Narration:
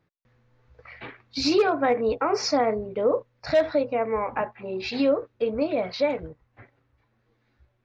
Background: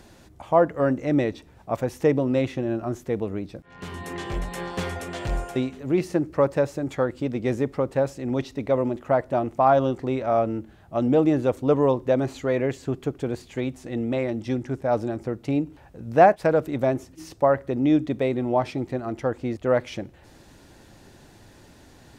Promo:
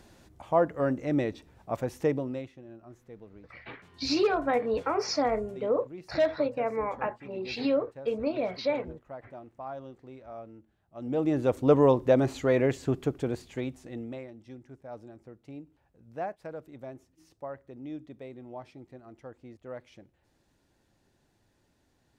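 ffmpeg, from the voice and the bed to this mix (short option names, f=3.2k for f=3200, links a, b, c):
-filter_complex "[0:a]adelay=2650,volume=-4.5dB[a];[1:a]volume=15.5dB,afade=t=out:st=2.01:d=0.5:silence=0.158489,afade=t=in:st=10.95:d=0.75:silence=0.0891251,afade=t=out:st=12.89:d=1.42:silence=0.105925[b];[a][b]amix=inputs=2:normalize=0"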